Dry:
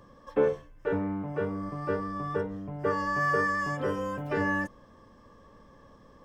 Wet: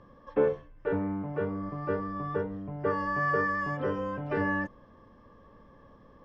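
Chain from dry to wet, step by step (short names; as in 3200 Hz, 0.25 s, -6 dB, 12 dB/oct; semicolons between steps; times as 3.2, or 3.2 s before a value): air absorption 210 m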